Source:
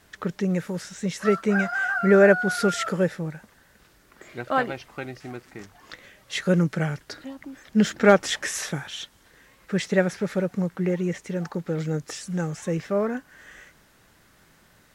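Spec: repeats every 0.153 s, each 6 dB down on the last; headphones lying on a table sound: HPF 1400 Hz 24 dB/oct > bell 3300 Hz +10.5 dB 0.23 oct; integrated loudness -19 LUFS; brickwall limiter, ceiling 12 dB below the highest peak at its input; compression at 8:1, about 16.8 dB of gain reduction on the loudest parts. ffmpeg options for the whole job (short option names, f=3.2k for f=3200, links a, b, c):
-af "acompressor=threshold=-29dB:ratio=8,alimiter=level_in=5.5dB:limit=-24dB:level=0:latency=1,volume=-5.5dB,highpass=f=1.4k:w=0.5412,highpass=f=1.4k:w=1.3066,equalizer=f=3.3k:t=o:w=0.23:g=10.5,aecho=1:1:153|306|459|612|765|918:0.501|0.251|0.125|0.0626|0.0313|0.0157,volume=21.5dB"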